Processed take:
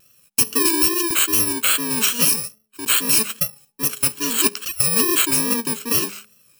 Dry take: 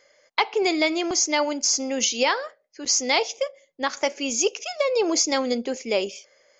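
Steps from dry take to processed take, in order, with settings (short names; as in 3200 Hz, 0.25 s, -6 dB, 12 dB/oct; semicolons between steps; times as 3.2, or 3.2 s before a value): FFT order left unsorted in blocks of 64 samples; de-hum 210.1 Hz, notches 4; vibrato 2.4 Hz 65 cents; gain +5 dB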